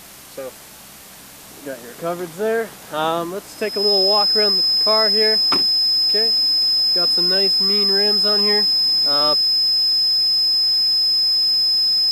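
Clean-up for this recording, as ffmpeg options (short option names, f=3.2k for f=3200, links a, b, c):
-af "adeclick=t=4,bandreject=f=65.7:t=h:w=4,bandreject=f=131.4:t=h:w=4,bandreject=f=197.1:t=h:w=4,bandreject=f=5.1k:w=30,afwtdn=0.01"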